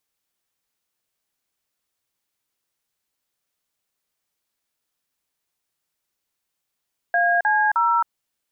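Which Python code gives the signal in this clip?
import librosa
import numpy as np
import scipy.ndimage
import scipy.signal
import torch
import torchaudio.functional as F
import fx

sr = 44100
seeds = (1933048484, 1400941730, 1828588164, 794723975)

y = fx.dtmf(sr, digits='AC0', tone_ms=268, gap_ms=41, level_db=-18.5)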